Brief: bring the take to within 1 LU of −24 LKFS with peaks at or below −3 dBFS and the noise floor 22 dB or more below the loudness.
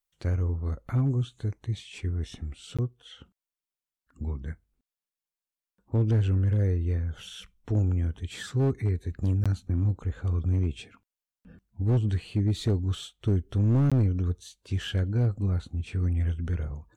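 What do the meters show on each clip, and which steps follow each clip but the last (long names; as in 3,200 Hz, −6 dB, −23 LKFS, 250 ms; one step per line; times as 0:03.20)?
share of clipped samples 1.0%; peaks flattened at −18.5 dBFS; number of dropouts 3; longest dropout 16 ms; integrated loudness −28.5 LKFS; sample peak −18.5 dBFS; target loudness −24.0 LKFS
→ clipped peaks rebuilt −18.5 dBFS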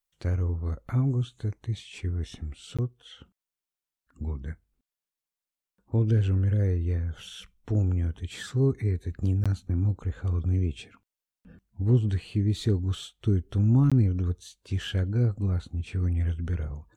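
share of clipped samples 0.0%; number of dropouts 3; longest dropout 16 ms
→ repair the gap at 0:02.77/0:09.44/0:13.90, 16 ms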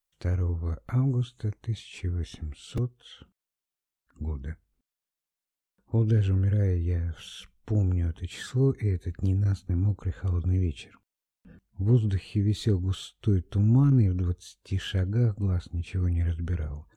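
number of dropouts 0; integrated loudness −28.0 LKFS; sample peak −10.5 dBFS; target loudness −24.0 LKFS
→ level +4 dB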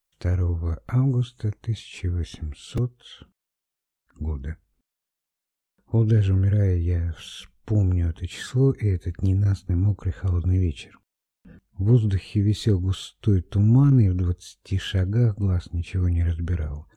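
integrated loudness −24.0 LKFS; sample peak −6.5 dBFS; background noise floor −86 dBFS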